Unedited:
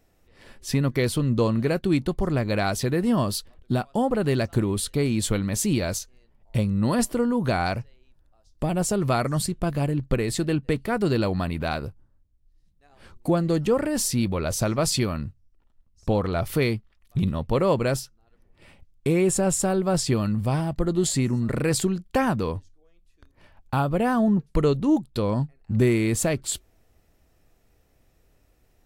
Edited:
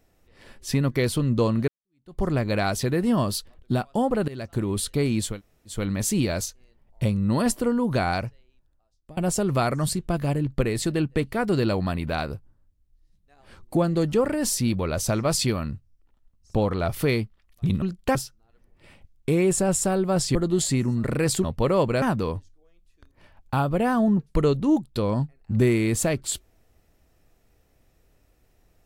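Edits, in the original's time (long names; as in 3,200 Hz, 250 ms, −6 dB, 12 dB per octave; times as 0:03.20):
0:01.68–0:02.20: fade in exponential
0:04.28–0:04.78: fade in, from −19.5 dB
0:05.30: splice in room tone 0.47 s, crossfade 0.24 s
0:07.63–0:08.70: fade out, to −23.5 dB
0:17.35–0:17.93: swap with 0:21.89–0:22.22
0:20.13–0:20.80: remove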